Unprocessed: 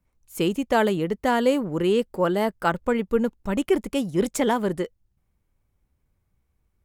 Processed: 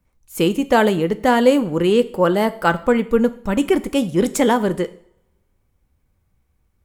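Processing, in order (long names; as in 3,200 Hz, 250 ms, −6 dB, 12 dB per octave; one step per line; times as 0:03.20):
coupled-rooms reverb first 0.53 s, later 1.6 s, from −27 dB, DRR 11.5 dB
level +5.5 dB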